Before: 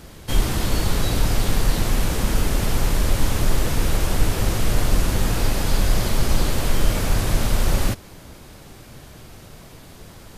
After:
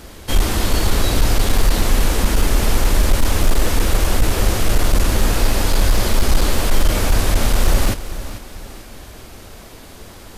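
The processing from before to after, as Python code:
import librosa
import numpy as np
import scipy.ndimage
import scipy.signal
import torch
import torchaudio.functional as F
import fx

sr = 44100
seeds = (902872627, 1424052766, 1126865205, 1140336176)

y = fx.peak_eq(x, sr, hz=140.0, db=-12.5, octaves=0.51)
y = np.clip(y, -10.0 ** (-12.0 / 20.0), 10.0 ** (-12.0 / 20.0))
y = fx.echo_feedback(y, sr, ms=443, feedback_pct=42, wet_db=-14)
y = F.gain(torch.from_numpy(y), 5.0).numpy()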